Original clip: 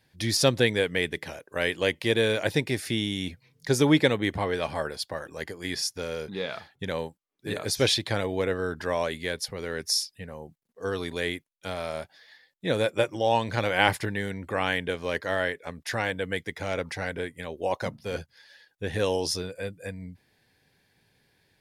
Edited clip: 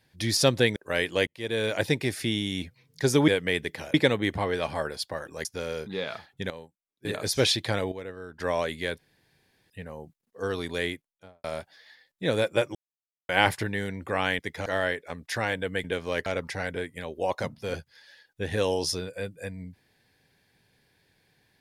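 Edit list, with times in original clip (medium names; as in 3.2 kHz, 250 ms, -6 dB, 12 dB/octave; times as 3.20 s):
0.76–1.42 s: move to 3.94 s
1.93–2.43 s: fade in
5.45–5.87 s: delete
6.92–7.47 s: gain -11.5 dB
8.34–8.82 s: gain -11.5 dB
9.40–10.12 s: room tone
11.27–11.86 s: studio fade out
13.17–13.71 s: mute
14.81–15.23 s: swap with 16.41–16.68 s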